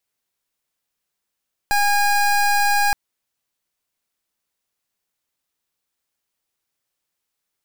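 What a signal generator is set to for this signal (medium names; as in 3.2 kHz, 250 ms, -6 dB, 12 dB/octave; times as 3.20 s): pulse 817 Hz, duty 25% -17 dBFS 1.22 s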